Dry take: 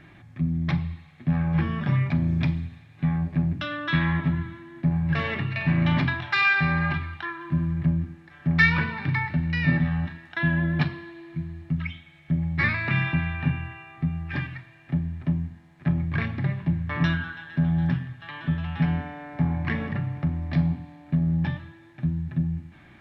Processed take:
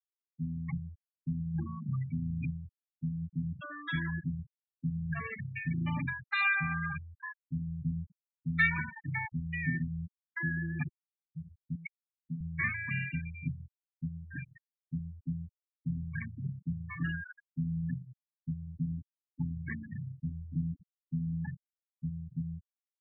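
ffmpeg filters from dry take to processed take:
ffmpeg -i in.wav -filter_complex "[0:a]asettb=1/sr,asplit=3[link_01][link_02][link_03];[link_01]atrim=end=11.754[link_04];[link_02]atrim=start=11.75:end=12.41,asetpts=PTS-STARTPTS,afade=type=in:duration=0.004:curve=qsin,afade=type=out:start_time=0.656:duration=0.004:curve=qsin,highpass=160[link_05];[link_03]atrim=start=12.406[link_06];[link_04][link_05]acrossfade=duration=0.004:curve1=hsin:curve2=qsin[link_07];[link_07][link_06]acrossfade=duration=0.004:curve1=qsin:curve2=hsin,lowshelf=frequency=450:gain=-4.5,afftfilt=real='re*gte(hypot(re,im),0.112)':imag='im*gte(hypot(re,im),0.112)':win_size=1024:overlap=0.75,volume=-7dB" out.wav

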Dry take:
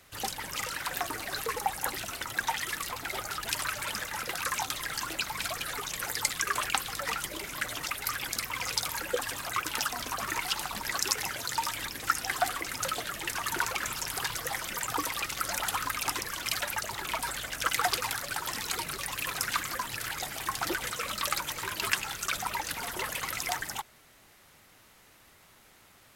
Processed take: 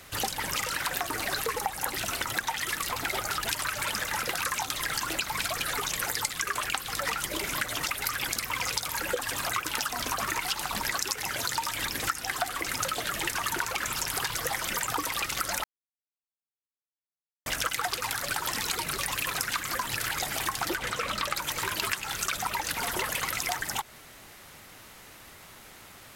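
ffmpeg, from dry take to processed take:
ffmpeg -i in.wav -filter_complex "[0:a]asettb=1/sr,asplit=3[link_01][link_02][link_03];[link_01]atrim=end=20.774[link_04];[link_02]atrim=start=20.77:end=21.36,asetpts=PTS-STARTPTS,afade=type=in:duration=0.004:curve=qsin,afade=type=out:start_time=0.586:duration=0.004:curve=qsin,highshelf=frequency=5700:gain=-11.5[link_05];[link_03]atrim=start=21.356[link_06];[link_04][link_05]acrossfade=duration=0.004:curve1=hsin:curve2=qsin[link_07];[link_07][link_06]acrossfade=duration=0.004:curve1=qsin:curve2=hsin,asplit=3[link_08][link_09][link_10];[link_08]atrim=end=15.64,asetpts=PTS-STARTPTS,afade=type=out:start_time=15.636:duration=0.004:curve=hsin[link_11];[link_09]atrim=start=15.64:end=17.46,asetpts=PTS-STARTPTS,volume=0[link_12];[link_10]atrim=start=17.46,asetpts=PTS-STARTPTS,afade=type=in:duration=0.004:curve=hsin[link_13];[link_11][link_12][link_13]concat=n=3:v=0:a=1,acompressor=threshold=-36dB:ratio=6,volume=9dB" out.wav

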